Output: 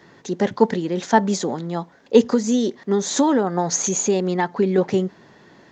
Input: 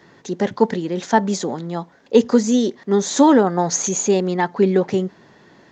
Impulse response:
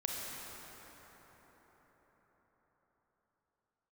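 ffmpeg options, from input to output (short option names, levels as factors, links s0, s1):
-filter_complex "[0:a]asettb=1/sr,asplit=3[s0][s1][s2];[s0]atrim=end=2.294[s3];[s1]atrim=start=2.29:end=4.78,asetpts=PTS-STARTPTS,afade=t=in:d=0.004:c=qsin,afade=t=out:st=2.486:d=0.004:c=qsin,acompressor=threshold=0.158:ratio=2.5[s4];[s2]atrim=start=4.776[s5];[s3][s4]acrossfade=d=0.004:c1=hsin:c2=qsin[s6];[s6][s5]acrossfade=d=0.004:c1=qsin:c2=hsin"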